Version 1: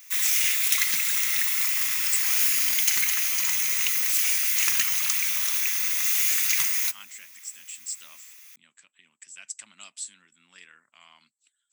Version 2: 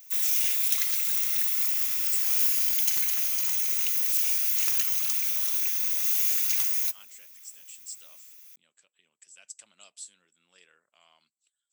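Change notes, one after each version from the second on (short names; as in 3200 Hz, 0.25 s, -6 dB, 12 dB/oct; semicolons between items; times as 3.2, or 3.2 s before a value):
master: add graphic EQ 125/250/500/1000/2000/4000/8000 Hz -7/-11/+7/-7/-11/-3/-6 dB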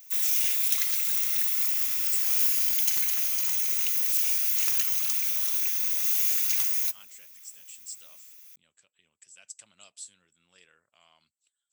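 speech: remove HPF 210 Hz 12 dB/oct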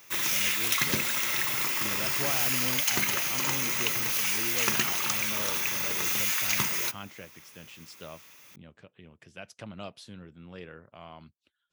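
speech: remove synth low-pass 7800 Hz, resonance Q 15; master: remove pre-emphasis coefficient 0.97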